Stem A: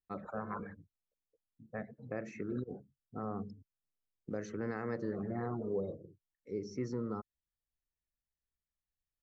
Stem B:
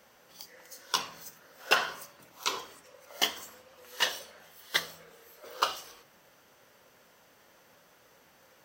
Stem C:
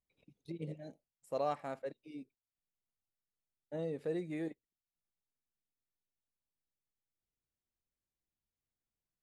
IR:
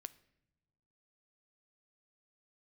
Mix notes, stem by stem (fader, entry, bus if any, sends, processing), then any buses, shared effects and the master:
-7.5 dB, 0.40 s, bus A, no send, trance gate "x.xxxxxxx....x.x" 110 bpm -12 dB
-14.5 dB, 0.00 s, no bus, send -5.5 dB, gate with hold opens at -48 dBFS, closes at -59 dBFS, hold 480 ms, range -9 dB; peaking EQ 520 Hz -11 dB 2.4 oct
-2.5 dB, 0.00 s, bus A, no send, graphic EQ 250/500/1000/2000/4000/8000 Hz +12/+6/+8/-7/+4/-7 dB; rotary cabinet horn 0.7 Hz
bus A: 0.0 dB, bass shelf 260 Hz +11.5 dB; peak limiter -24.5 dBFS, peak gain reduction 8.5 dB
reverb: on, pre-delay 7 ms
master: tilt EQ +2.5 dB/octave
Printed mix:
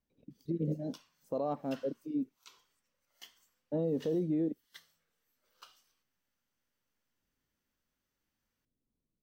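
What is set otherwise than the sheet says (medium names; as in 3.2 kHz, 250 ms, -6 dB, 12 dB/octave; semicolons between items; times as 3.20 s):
stem A: muted; stem B -14.5 dB -> -26.0 dB; master: missing tilt EQ +2.5 dB/octave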